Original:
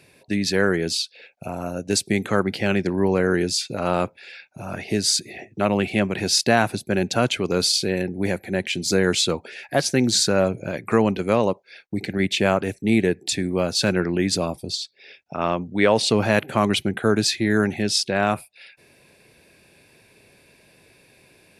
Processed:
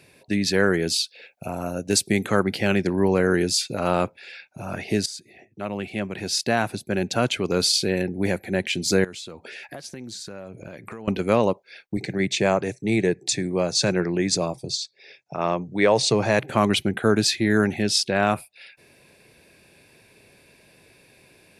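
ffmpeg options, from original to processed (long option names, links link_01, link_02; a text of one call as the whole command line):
ffmpeg -i in.wav -filter_complex "[0:a]asettb=1/sr,asplit=3[link_01][link_02][link_03];[link_01]atrim=end=0.734[link_04];[link_02]atrim=start=0.73:end=3.93,asetpts=PTS-STARTPTS,afade=type=in:duration=0.004:curve=qsin,afade=type=out:start_time=3.196:duration=0.004:curve=qsin,highshelf=frequency=11000:gain=7.5[link_05];[link_03]atrim=start=3.926[link_06];[link_04][link_05]acrossfade=duration=0.004:curve1=hsin:curve2=qsin[link_07];[link_07][link_06]acrossfade=duration=0.004:curve1=qsin:curve2=hsin,asettb=1/sr,asplit=3[link_08][link_09][link_10];[link_08]atrim=end=9.044[link_11];[link_09]atrim=start=9.04:end=11.08,asetpts=PTS-STARTPTS,afade=type=in:duration=0.004:curve=qsin,afade=type=out:start_time=2.036:duration=0.004:curve=qsin,acompressor=threshold=-34dB:ratio=8:attack=3.2:release=140:knee=1:detection=peak[link_12];[link_10]atrim=start=11.076[link_13];[link_11][link_12]acrossfade=duration=0.004:curve1=hsin:curve2=qsin[link_14];[link_14][link_13]acrossfade=duration=0.004:curve1=qsin:curve2=hsin,asettb=1/sr,asplit=3[link_15][link_16][link_17];[link_15]atrim=end=11.974[link_18];[link_16]atrim=start=11.97:end=16.5,asetpts=PTS-STARTPTS,afade=type=in:duration=0.004:curve=qsin,afade=type=out:start_time=4.526:duration=0.004:curve=qsin,highpass=130,equalizer=frequency=130:width_type=q:width=4:gain=9,equalizer=frequency=240:width_type=q:width=4:gain=-8,equalizer=frequency=1400:width_type=q:width=4:gain=-5,equalizer=frequency=3000:width_type=q:width=4:gain=-7,equalizer=frequency=6400:width_type=q:width=4:gain=5,lowpass=frequency=9400:width=0.5412,lowpass=frequency=9400:width=1.3066[link_19];[link_17]atrim=start=16.496[link_20];[link_18][link_19]acrossfade=duration=0.004:curve1=hsin:curve2=qsin[link_21];[link_21][link_20]acrossfade=duration=0.004:curve1=qsin:curve2=hsin,asplit=2[link_22][link_23];[link_22]atrim=end=5.06,asetpts=PTS-STARTPTS,afade=type=out:start_time=5.056:duration=0.004:curve=hsin:silence=0.141254[link_24];[link_23]atrim=start=5.06,asetpts=PTS-STARTPTS,afade=type=in:duration=2.76:silence=0.141254[link_25];[link_24][link_25]concat=n=2:v=0:a=1" out.wav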